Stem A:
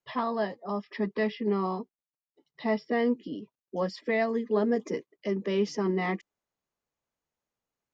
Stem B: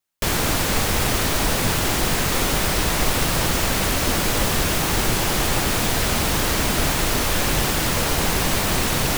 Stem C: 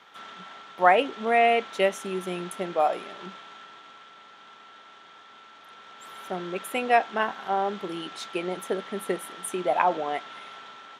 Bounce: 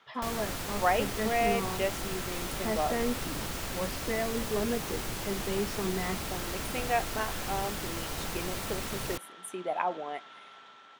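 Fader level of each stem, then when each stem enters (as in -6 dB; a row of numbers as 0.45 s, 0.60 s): -5.5 dB, -15.5 dB, -8.0 dB; 0.00 s, 0.00 s, 0.00 s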